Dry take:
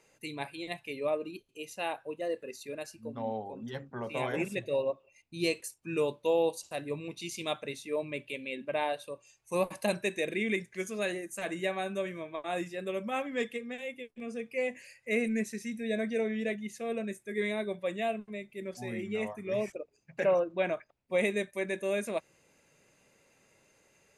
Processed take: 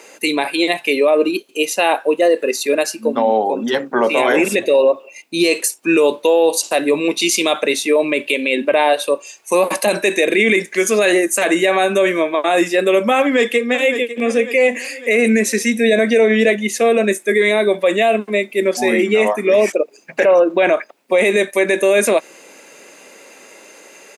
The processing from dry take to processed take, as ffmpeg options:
ffmpeg -i in.wav -filter_complex "[0:a]asplit=2[link_01][link_02];[link_02]afade=type=in:start_time=13.19:duration=0.01,afade=type=out:start_time=14.22:duration=0.01,aecho=0:1:550|1100|1650|2200|2750:0.16788|0.0839402|0.0419701|0.0209851|0.0104925[link_03];[link_01][link_03]amix=inputs=2:normalize=0,highpass=frequency=260:width=0.5412,highpass=frequency=260:width=1.3066,acontrast=84,alimiter=level_in=22dB:limit=-1dB:release=50:level=0:latency=1,volume=-4.5dB" out.wav

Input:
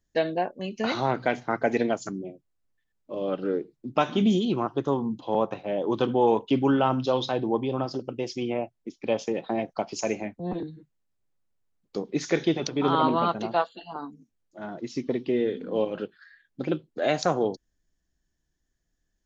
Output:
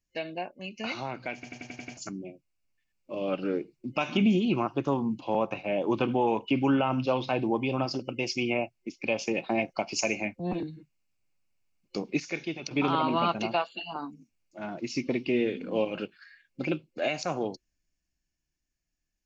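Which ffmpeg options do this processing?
ffmpeg -i in.wav -filter_complex "[0:a]asettb=1/sr,asplit=3[link_01][link_02][link_03];[link_01]atrim=end=4.174[link_04];[link_02]atrim=start=4.17:end=7.51,asetpts=PTS-STARTPTS,afade=type=in:duration=0.004:curve=qsin,afade=type=out:start_time=3.336:duration=0.004:curve=qsin,acrossover=split=2900[link_05][link_06];[link_06]acompressor=threshold=-54dB:ratio=4:attack=1:release=60[link_07];[link_05][link_07]amix=inputs=2:normalize=0[link_08];[link_03]atrim=start=7.506[link_09];[link_04][link_08]acrossfade=duration=0.004:curve1=hsin:curve2=qsin[link_10];[link_10][link_09]acrossfade=duration=0.004:curve1=qsin:curve2=hsin,asplit=10[link_11][link_12][link_13][link_14][link_15][link_16][link_17][link_18][link_19][link_20];[link_11]atrim=end=1.432[link_21];[link_12]atrim=start=1.338:end=1.432[link_22];[link_13]atrim=start=1.338:end=1.432[link_23];[link_14]atrim=start=1.338:end=1.432[link_24];[link_15]atrim=start=1.338:end=1.432[link_25];[link_16]atrim=start=1.338:end=1.432[link_26];[link_17]atrim=start=1.338:end=1.432[link_27];[link_18]atrim=start=1.968:end=12.202[link_28];[link_19]atrim=start=12.198:end=12.712,asetpts=PTS-STARTPTS,volume=-10.5dB[link_29];[link_20]atrim=start=12.708[link_30];[link_21][link_22]acrossfade=duration=0.004:curve1=hsin:curve2=hsin[link_31];[link_31][link_23]acrossfade=duration=0.004:curve1=hsin:curve2=hsin[link_32];[link_32][link_24]acrossfade=duration=0.004:curve1=hsin:curve2=hsin[link_33];[link_33][link_25]acrossfade=duration=0.004:curve1=hsin:curve2=hsin[link_34];[link_34][link_26]acrossfade=duration=0.004:curve1=hsin:curve2=hsin[link_35];[link_35][link_27]acrossfade=duration=0.004:curve1=hsin:curve2=hsin[link_36];[link_36][link_28]acrossfade=duration=0.004:curve1=hsin:curve2=hsin[link_37];[link_37][link_29]acrossfade=duration=0.004:curve1=hsin:curve2=hsin[link_38];[link_38][link_30]acrossfade=duration=0.004:curve1=hsin:curve2=hsin,superequalizer=7b=0.631:12b=3.55:14b=2:15b=1.58,alimiter=limit=-15dB:level=0:latency=1:release=143,dynaudnorm=framelen=230:gausssize=21:maxgain=8dB,volume=-8dB" out.wav

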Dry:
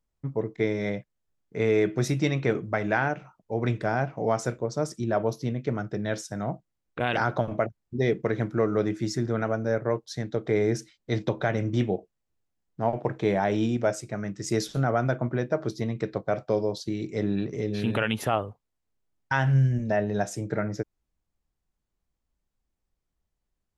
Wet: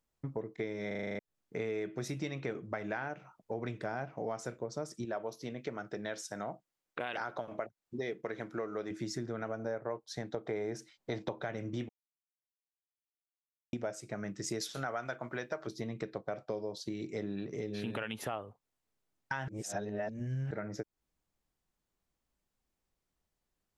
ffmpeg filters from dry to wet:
ffmpeg -i in.wav -filter_complex "[0:a]asettb=1/sr,asplit=3[link_01][link_02][link_03];[link_01]atrim=end=5.054[link_04];[link_02]atrim=start=5.05:end=8.91,asetpts=PTS-STARTPTS,afade=type=in:duration=0.004:curve=qsin,afade=type=out:start_time=3.856:duration=0.004:curve=qsin,lowshelf=frequency=230:gain=-12[link_05];[link_03]atrim=start=8.906[link_06];[link_04][link_05]acrossfade=duration=0.004:curve1=hsin:curve2=qsin[link_07];[link_07][link_06]acrossfade=duration=0.004:curve1=qsin:curve2=hsin,asettb=1/sr,asplit=3[link_08][link_09][link_10];[link_08]atrim=end=9.594[link_11];[link_09]atrim=start=9.59:end=11.39,asetpts=PTS-STARTPTS,afade=type=in:duration=0.004:curve=qsin,afade=type=out:start_time=1.796:duration=0.004:curve=qsin,equalizer=frequency=820:width_type=o:width=1.3:gain=7[link_12];[link_10]atrim=start=11.386[link_13];[link_11][link_12]acrossfade=duration=0.004:curve1=hsin:curve2=qsin[link_14];[link_14][link_13]acrossfade=duration=0.004:curve1=qsin:curve2=hsin,asettb=1/sr,asplit=3[link_15][link_16][link_17];[link_15]atrim=end=14.614[link_18];[link_16]atrim=start=14.61:end=15.67,asetpts=PTS-STARTPTS,afade=type=in:duration=0.004:curve=qsin,afade=type=out:start_time=1.056:duration=0.004:curve=qsin,tiltshelf=frequency=640:gain=-7.5[link_19];[link_17]atrim=start=15.666[link_20];[link_18][link_19]acrossfade=duration=0.004:curve1=hsin:curve2=qsin[link_21];[link_21][link_20]acrossfade=duration=0.004:curve1=qsin:curve2=hsin,asplit=13[link_22][link_23][link_24][link_25][link_26][link_27][link_28][link_29][link_30][link_31][link_32][link_33][link_34];[link_22]atrim=end=0.912[link_35];[link_23]atrim=start=0.868:end=0.912[link_36];[link_24]atrim=start=0.868:end=0.912[link_37];[link_25]atrim=start=0.868:end=0.912[link_38];[link_26]atrim=start=0.868:end=0.912[link_39];[link_27]atrim=start=0.868:end=0.912[link_40];[link_28]atrim=start=0.868:end=0.912[link_41];[link_29]atrim=start=0.868:end=0.912[link_42];[link_30]atrim=start=1.188:end=11.89,asetpts=PTS-STARTPTS,afade=type=out:start_time=10.698:duration=0.004:curve=hsin[link_43];[link_31]atrim=start=11.89:end=13.73,asetpts=PTS-STARTPTS,volume=0[link_44];[link_32]atrim=start=13.73:end=19.482,asetpts=PTS-STARTPTS,afade=type=in:duration=0.004:curve=hsin[link_45];[link_33]atrim=start=19.478:end=20.512,asetpts=PTS-STARTPTS,areverse[link_46];[link_34]atrim=start=20.508[link_47];[link_35][link_36]acrossfade=duration=0.004:curve1=hsin:curve2=hsin[link_48];[link_48][link_37]acrossfade=duration=0.004:curve1=hsin:curve2=hsin[link_49];[link_49][link_38]acrossfade=duration=0.004:curve1=hsin:curve2=hsin[link_50];[link_50][link_39]acrossfade=duration=0.004:curve1=hsin:curve2=hsin[link_51];[link_51][link_40]acrossfade=duration=0.004:curve1=hsin:curve2=hsin[link_52];[link_52][link_41]acrossfade=duration=0.004:curve1=hsin:curve2=hsin[link_53];[link_53][link_42]acrossfade=duration=0.004:curve1=hsin:curve2=hsin[link_54];[link_43][link_44][link_45]concat=n=3:v=0:a=1[link_55];[link_54][link_55]acrossfade=duration=0.004:curve1=hsin:curve2=hsin[link_56];[link_56][link_46]acrossfade=duration=0.004:curve1=hsin:curve2=hsin[link_57];[link_57][link_47]acrossfade=duration=0.004:curve1=hsin:curve2=hsin,lowshelf=frequency=120:gain=-10,acompressor=threshold=-38dB:ratio=4,volume=1.5dB" out.wav

